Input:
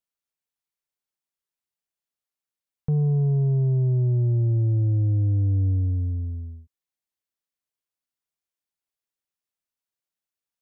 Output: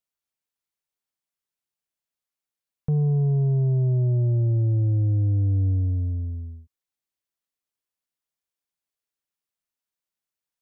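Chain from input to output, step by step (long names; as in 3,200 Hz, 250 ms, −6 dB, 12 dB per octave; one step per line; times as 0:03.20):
dynamic equaliser 610 Hz, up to +7 dB, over −60 dBFS, Q 6.5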